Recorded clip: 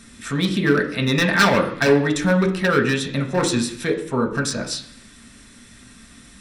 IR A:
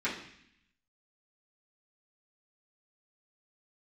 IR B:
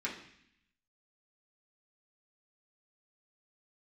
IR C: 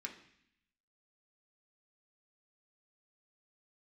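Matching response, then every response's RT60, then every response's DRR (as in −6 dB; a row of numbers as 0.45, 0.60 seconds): C; 0.65, 0.65, 0.65 seconds; −11.5, −6.5, 0.5 decibels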